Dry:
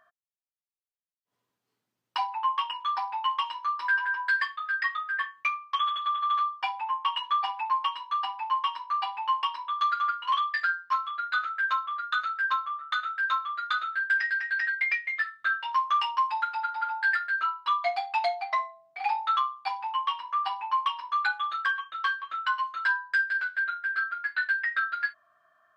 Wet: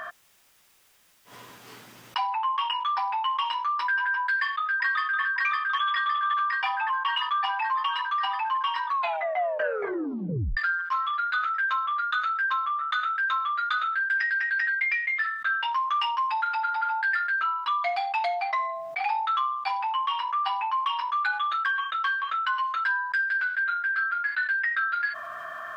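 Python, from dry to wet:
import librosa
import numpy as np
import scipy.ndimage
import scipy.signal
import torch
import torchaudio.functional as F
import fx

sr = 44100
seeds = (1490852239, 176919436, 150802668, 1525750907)

y = fx.echo_throw(x, sr, start_s=4.24, length_s=0.97, ms=560, feedback_pct=70, wet_db=-3.0)
y = fx.edit(y, sr, fx.tape_stop(start_s=8.84, length_s=1.73), tone=tone)
y = fx.peak_eq(y, sr, hz=1900.0, db=4.5, octaves=2.4)
y = fx.notch(y, sr, hz=4200.0, q=20.0)
y = fx.env_flatten(y, sr, amount_pct=70)
y = y * 10.0 ** (-6.5 / 20.0)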